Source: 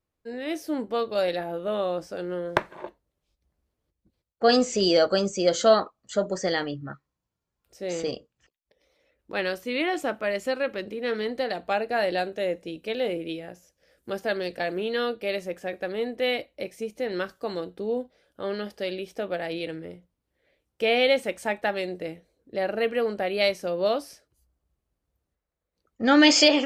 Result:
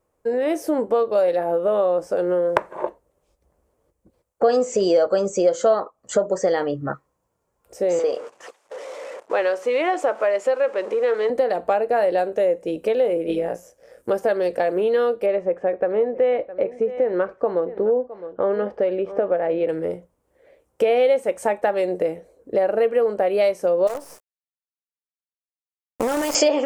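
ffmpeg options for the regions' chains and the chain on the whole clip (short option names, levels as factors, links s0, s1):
-filter_complex "[0:a]asettb=1/sr,asplit=3[s0][s1][s2];[s0]atrim=end=7.994[s3];[s1]atrim=start=7.99:end=11.3,asetpts=PTS-STARTPTS,afade=t=in:d=0.004:c=qsin,afade=t=out:st=3.306:d=0.004:c=qsin,aeval=exprs='val(0)+0.5*0.0075*sgn(val(0))':c=same,highpass=450,lowpass=5800,agate=range=0.178:threshold=0.00224:ratio=16:release=100:detection=peak[s4];[s2]atrim=start=11.296[s5];[s3][s4]acrossfade=d=0.004:c1=hsin:c2=qsin[s6];[s6][s5]acrossfade=d=0.004:c1=qsin:c2=hsin,asettb=1/sr,asplit=3[s7][s8][s9];[s7]atrim=end=13.264[s10];[s8]atrim=start=13.26:end=14.1,asetpts=PTS-STARTPTS,afade=t=in:d=0.004:c=qsin,afade=t=out:st=0.836:d=0.004:c=qsin,tremolo=f=120:d=0.519,asplit=2[s11][s12];[s12]adelay=24,volume=0.794[s13];[s11][s13]amix=inputs=2:normalize=0,atrim=end_sample=37044[s14];[s9]atrim=start=14.096[s15];[s10][s14]acrossfade=d=0.004:c1=hsin:c2=qsin[s16];[s16][s15]acrossfade=d=0.004:c1=qsin:c2=hsin,asettb=1/sr,asplit=3[s17][s18][s19];[s17]atrim=end=15.264[s20];[s18]atrim=start=15.26:end=19.69,asetpts=PTS-STARTPTS,afade=t=in:d=0.004:c=qsin,afade=t=out:st=4.426:d=0.004:c=qsin,lowpass=2000,aecho=1:1:661:0.106,atrim=end_sample=195363[s21];[s19]atrim=start=19.686[s22];[s20][s21]acrossfade=d=0.004:c1=hsin:c2=qsin[s23];[s23][s22]acrossfade=d=0.004:c1=qsin:c2=hsin,asettb=1/sr,asplit=3[s24][s25][s26];[s24]atrim=end=23.874[s27];[s25]atrim=start=23.87:end=26.35,asetpts=PTS-STARTPTS,afade=t=in:d=0.004:c=qsin,afade=t=out:st=2.476:d=0.004:c=qsin,highpass=57,acompressor=threshold=0.0316:ratio=8:attack=3.2:release=140:knee=1:detection=peak,acrusher=bits=6:dc=4:mix=0:aa=0.000001[s28];[s26]atrim=start=26.346[s29];[s27][s28]acrossfade=d=0.004:c1=hsin:c2=qsin[s30];[s30][s29]acrossfade=d=0.004:c1=qsin:c2=hsin,equalizer=f=500:t=o:w=1:g=11,equalizer=f=1000:t=o:w=1:g=7,equalizer=f=4000:t=o:w=1:g=-8,equalizer=f=8000:t=o:w=1:g=6,acompressor=threshold=0.0447:ratio=3,volume=2.24"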